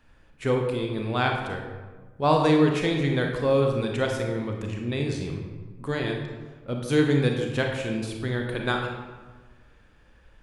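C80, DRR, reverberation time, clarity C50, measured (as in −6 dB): 5.5 dB, 1.5 dB, 1.4 s, 3.5 dB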